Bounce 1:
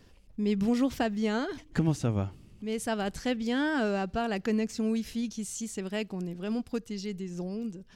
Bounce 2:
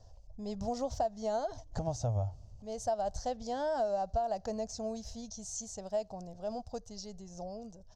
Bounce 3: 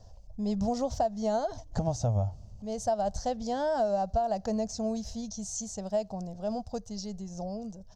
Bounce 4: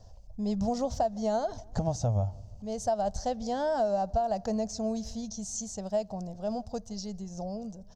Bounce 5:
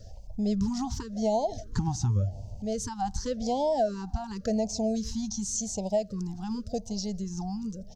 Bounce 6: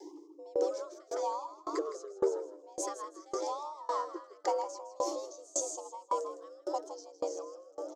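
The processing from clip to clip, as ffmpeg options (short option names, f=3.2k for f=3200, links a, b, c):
-af "firequalizer=gain_entry='entry(110,0);entry(150,-15);entry(340,-22);entry(640,5);entry(1200,-15);entry(2300,-27);entry(4200,-10);entry(6200,-2);entry(9800,-24)':delay=0.05:min_phase=1,acompressor=threshold=-33dB:ratio=6,volume=4.5dB"
-af "equalizer=f=200:w=2.8:g=7,volume=4dB"
-filter_complex "[0:a]asplit=2[a][b];[b]adelay=162,lowpass=f=1.4k:p=1,volume=-23dB,asplit=2[c][d];[d]adelay=162,lowpass=f=1.4k:p=1,volume=0.5,asplit=2[e][f];[f]adelay=162,lowpass=f=1.4k:p=1,volume=0.5[g];[a][c][e][g]amix=inputs=4:normalize=0"
-filter_complex "[0:a]asplit=2[a][b];[b]acompressor=threshold=-36dB:ratio=6,volume=0.5dB[c];[a][c]amix=inputs=2:normalize=0,afftfilt=real='re*(1-between(b*sr/1024,490*pow(1500/490,0.5+0.5*sin(2*PI*0.9*pts/sr))/1.41,490*pow(1500/490,0.5+0.5*sin(2*PI*0.9*pts/sr))*1.41))':imag='im*(1-between(b*sr/1024,490*pow(1500/490,0.5+0.5*sin(2*PI*0.9*pts/sr))/1.41,490*pow(1500/490,0.5+0.5*sin(2*PI*0.9*pts/sr))*1.41))':win_size=1024:overlap=0.75"
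-filter_complex "[0:a]afreqshift=290,asplit=2[a][b];[b]asplit=6[c][d][e][f][g][h];[c]adelay=160,afreqshift=62,volume=-5.5dB[i];[d]adelay=320,afreqshift=124,volume=-12.2dB[j];[e]adelay=480,afreqshift=186,volume=-19dB[k];[f]adelay=640,afreqshift=248,volume=-25.7dB[l];[g]adelay=800,afreqshift=310,volume=-32.5dB[m];[h]adelay=960,afreqshift=372,volume=-39.2dB[n];[i][j][k][l][m][n]amix=inputs=6:normalize=0[o];[a][o]amix=inputs=2:normalize=0,aeval=exprs='val(0)*pow(10,-27*if(lt(mod(1.8*n/s,1),2*abs(1.8)/1000),1-mod(1.8*n/s,1)/(2*abs(1.8)/1000),(mod(1.8*n/s,1)-2*abs(1.8)/1000)/(1-2*abs(1.8)/1000))/20)':c=same"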